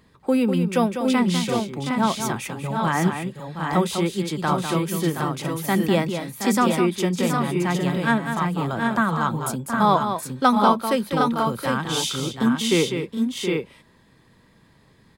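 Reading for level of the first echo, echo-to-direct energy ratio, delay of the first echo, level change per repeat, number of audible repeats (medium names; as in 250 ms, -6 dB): -8.0 dB, -2.0 dB, 199 ms, no regular repeats, 3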